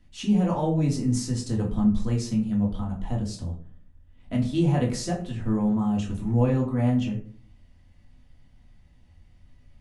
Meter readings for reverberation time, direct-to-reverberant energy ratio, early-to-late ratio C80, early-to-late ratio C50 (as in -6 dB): 0.50 s, -3.0 dB, 13.5 dB, 9.0 dB